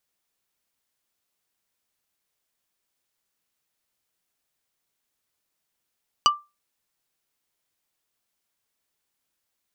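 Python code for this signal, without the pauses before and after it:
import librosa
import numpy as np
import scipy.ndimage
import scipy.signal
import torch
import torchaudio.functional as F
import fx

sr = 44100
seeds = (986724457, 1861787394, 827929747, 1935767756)

y = fx.strike_wood(sr, length_s=0.45, level_db=-11, body='plate', hz=1180.0, decay_s=0.24, tilt_db=3.0, modes=5)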